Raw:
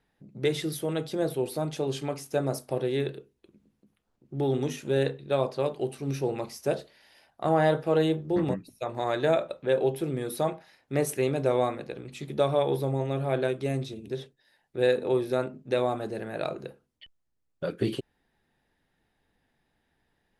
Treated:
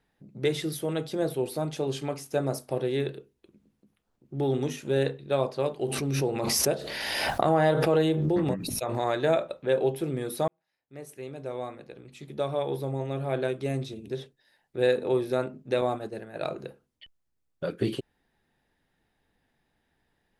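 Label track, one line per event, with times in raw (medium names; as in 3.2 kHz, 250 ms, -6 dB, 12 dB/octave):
5.840000	9.200000	swell ahead of each attack at most 24 dB/s
10.480000	13.940000	fade in
15.810000	16.450000	expander -31 dBFS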